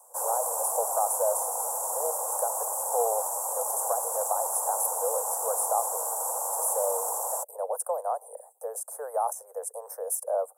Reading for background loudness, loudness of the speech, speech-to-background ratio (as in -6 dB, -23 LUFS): -28.5 LUFS, -31.5 LUFS, -3.0 dB